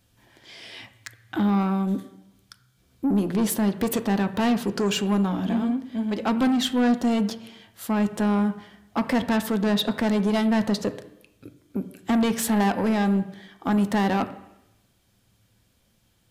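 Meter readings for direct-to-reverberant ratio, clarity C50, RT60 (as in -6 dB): 9.0 dB, 13.5 dB, 0.85 s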